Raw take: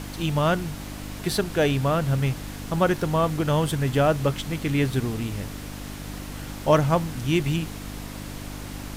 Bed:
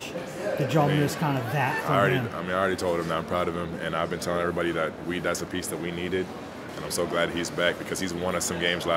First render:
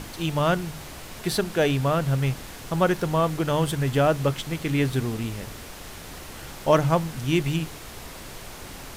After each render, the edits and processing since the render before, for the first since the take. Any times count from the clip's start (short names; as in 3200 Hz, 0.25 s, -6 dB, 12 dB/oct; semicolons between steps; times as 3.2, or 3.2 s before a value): de-hum 50 Hz, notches 6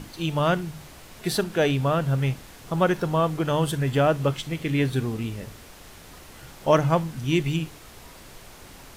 noise print and reduce 6 dB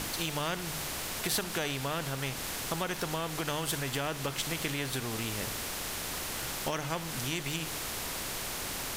compressor, threshold -27 dBFS, peak gain reduction 13.5 dB; spectral compressor 2:1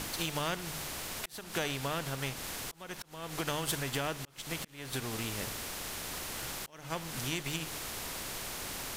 auto swell 0.321 s; upward expander 1.5:1, over -48 dBFS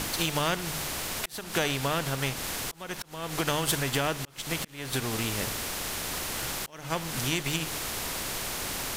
gain +6.5 dB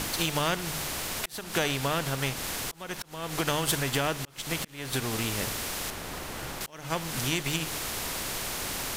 5.9–6.61 high shelf 2400 Hz -9 dB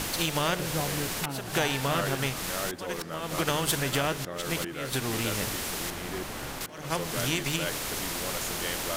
add bed -10.5 dB